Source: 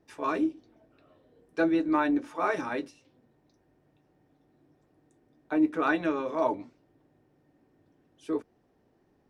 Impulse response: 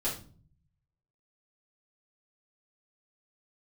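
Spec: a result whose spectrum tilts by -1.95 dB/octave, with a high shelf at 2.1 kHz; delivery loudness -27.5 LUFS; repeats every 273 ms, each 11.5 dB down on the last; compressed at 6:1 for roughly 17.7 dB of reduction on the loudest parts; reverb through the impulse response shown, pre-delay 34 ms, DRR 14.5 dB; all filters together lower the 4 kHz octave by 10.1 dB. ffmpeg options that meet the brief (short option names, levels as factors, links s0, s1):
-filter_complex "[0:a]highshelf=f=2100:g=-5,equalizer=f=4000:t=o:g=-8,acompressor=threshold=0.01:ratio=6,aecho=1:1:273|546|819:0.266|0.0718|0.0194,asplit=2[s0][s1];[1:a]atrim=start_sample=2205,adelay=34[s2];[s1][s2]afir=irnorm=-1:irlink=0,volume=0.1[s3];[s0][s3]amix=inputs=2:normalize=0,volume=6.68"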